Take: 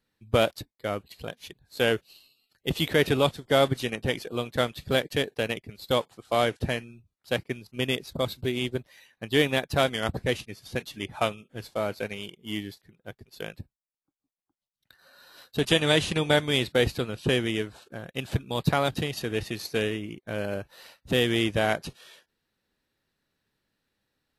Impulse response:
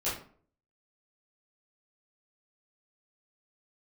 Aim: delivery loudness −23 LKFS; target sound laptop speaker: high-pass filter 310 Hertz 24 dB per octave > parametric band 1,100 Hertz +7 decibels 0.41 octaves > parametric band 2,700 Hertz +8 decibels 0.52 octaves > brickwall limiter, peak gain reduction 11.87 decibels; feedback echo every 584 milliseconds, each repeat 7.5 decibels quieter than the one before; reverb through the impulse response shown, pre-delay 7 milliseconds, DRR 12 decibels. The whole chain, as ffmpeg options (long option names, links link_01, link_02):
-filter_complex "[0:a]aecho=1:1:584|1168|1752|2336|2920:0.422|0.177|0.0744|0.0312|0.0131,asplit=2[link_01][link_02];[1:a]atrim=start_sample=2205,adelay=7[link_03];[link_02][link_03]afir=irnorm=-1:irlink=0,volume=-18.5dB[link_04];[link_01][link_04]amix=inputs=2:normalize=0,highpass=frequency=310:width=0.5412,highpass=frequency=310:width=1.3066,equalizer=frequency=1100:width_type=o:width=0.41:gain=7,equalizer=frequency=2700:width_type=o:width=0.52:gain=8,volume=7dB,alimiter=limit=-10dB:level=0:latency=1"